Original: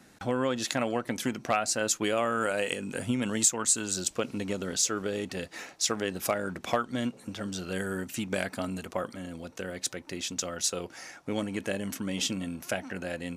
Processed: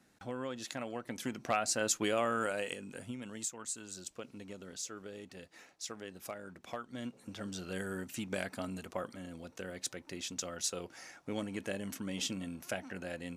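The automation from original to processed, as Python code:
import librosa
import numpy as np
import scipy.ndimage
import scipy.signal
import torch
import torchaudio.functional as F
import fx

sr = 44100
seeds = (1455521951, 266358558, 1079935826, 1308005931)

y = fx.gain(x, sr, db=fx.line((0.91, -11.5), (1.64, -4.0), (2.32, -4.0), (3.22, -15.0), (6.7, -15.0), (7.39, -6.5)))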